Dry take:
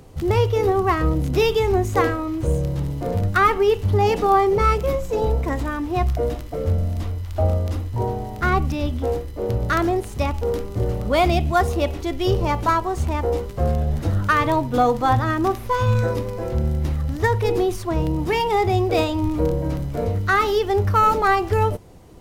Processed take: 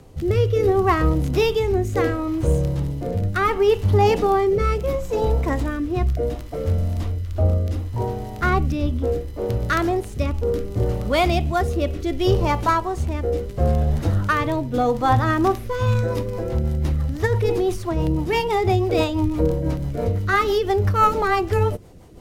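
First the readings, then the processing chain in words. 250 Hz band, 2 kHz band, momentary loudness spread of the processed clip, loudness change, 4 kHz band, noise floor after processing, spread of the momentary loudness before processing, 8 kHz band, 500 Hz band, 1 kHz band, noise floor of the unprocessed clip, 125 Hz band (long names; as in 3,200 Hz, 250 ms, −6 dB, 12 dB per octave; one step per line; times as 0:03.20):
+0.5 dB, −1.5 dB, 7 LU, −0.5 dB, −0.5 dB, −32 dBFS, 7 LU, −1.0 dB, 0.0 dB, −2.0 dB, −33 dBFS, +0.5 dB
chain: rotating-speaker cabinet horn 0.7 Hz, later 6 Hz, at 0:15.44
level +2 dB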